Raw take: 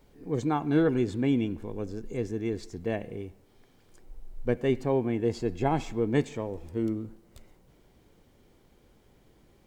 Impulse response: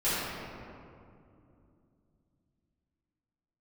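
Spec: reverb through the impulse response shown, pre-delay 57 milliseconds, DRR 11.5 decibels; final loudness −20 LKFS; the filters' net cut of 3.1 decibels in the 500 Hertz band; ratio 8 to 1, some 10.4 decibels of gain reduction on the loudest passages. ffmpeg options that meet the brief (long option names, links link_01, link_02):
-filter_complex "[0:a]equalizer=frequency=500:width_type=o:gain=-4,acompressor=threshold=-32dB:ratio=8,asplit=2[link_01][link_02];[1:a]atrim=start_sample=2205,adelay=57[link_03];[link_02][link_03]afir=irnorm=-1:irlink=0,volume=-23.5dB[link_04];[link_01][link_04]amix=inputs=2:normalize=0,volume=18dB"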